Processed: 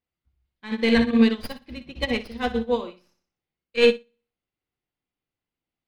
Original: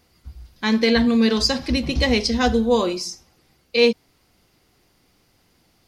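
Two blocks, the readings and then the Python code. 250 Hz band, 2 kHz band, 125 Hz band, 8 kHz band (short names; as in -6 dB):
-3.5 dB, -3.5 dB, -8.5 dB, under -15 dB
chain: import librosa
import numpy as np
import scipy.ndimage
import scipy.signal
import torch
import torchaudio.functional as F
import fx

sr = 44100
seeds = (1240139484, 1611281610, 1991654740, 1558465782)

p1 = fx.tracing_dist(x, sr, depth_ms=0.12)
p2 = fx.peak_eq(p1, sr, hz=64.0, db=-2.0, octaves=0.77)
p3 = fx.level_steps(p2, sr, step_db=9)
p4 = p2 + F.gain(torch.from_numpy(p3), 1.0).numpy()
p5 = fx.high_shelf_res(p4, sr, hz=4300.0, db=-10.0, q=1.5)
p6 = p5 + fx.room_flutter(p5, sr, wall_m=10.5, rt60_s=0.52, dry=0)
p7 = fx.upward_expand(p6, sr, threshold_db=-26.0, expansion=2.5)
y = F.gain(torch.from_numpy(p7), -5.5).numpy()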